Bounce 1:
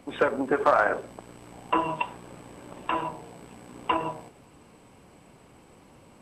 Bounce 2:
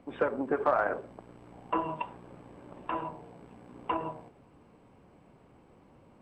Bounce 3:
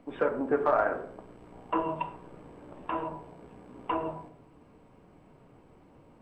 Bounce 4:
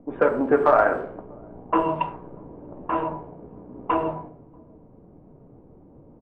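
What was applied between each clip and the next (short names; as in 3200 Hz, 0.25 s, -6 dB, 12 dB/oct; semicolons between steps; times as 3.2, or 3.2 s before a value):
LPF 1300 Hz 6 dB/oct; gain -4 dB
on a send at -3.5 dB: air absorption 460 m + reverb RT60 0.60 s, pre-delay 3 ms
outdoor echo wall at 110 m, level -27 dB; low-pass opened by the level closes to 510 Hz, open at -23.5 dBFS; gain +8 dB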